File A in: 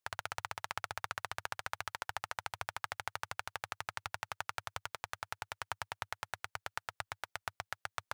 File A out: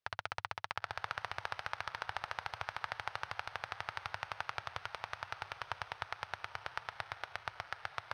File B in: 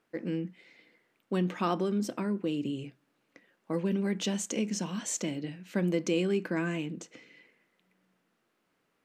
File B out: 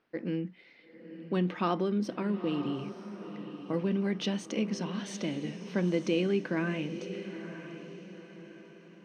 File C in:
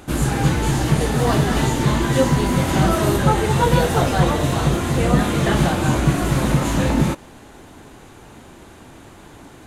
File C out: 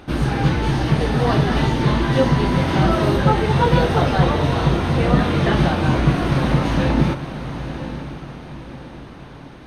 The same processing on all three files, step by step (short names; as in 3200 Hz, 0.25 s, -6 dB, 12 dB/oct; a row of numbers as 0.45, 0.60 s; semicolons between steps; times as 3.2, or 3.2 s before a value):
polynomial smoothing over 15 samples; on a send: diffused feedback echo 0.943 s, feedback 41%, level -11 dB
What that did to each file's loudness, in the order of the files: 0.0, -1.0, 0.0 LU